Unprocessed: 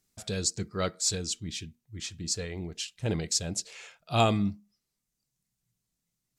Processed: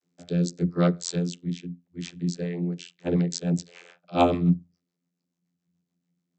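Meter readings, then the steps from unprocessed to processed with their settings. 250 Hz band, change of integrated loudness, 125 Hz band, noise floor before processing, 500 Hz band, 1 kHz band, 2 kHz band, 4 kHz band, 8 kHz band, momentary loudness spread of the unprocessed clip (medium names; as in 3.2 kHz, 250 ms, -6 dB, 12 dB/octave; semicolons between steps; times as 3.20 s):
+8.5 dB, +4.0 dB, +6.5 dB, -84 dBFS, +5.0 dB, +3.0 dB, -1.5 dB, -6.0 dB, -8.5 dB, 14 LU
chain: rotary cabinet horn 0.8 Hz, later 7 Hz, at 2.02 s; vocoder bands 32, saw 87 Hz; trim +8 dB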